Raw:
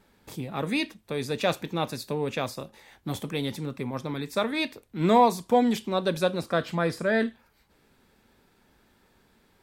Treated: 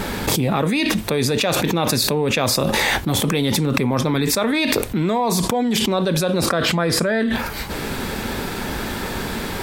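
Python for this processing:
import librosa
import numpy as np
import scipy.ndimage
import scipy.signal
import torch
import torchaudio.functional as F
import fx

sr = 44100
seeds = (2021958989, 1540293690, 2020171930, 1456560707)

y = fx.env_flatten(x, sr, amount_pct=100)
y = y * 10.0 ** (-3.0 / 20.0)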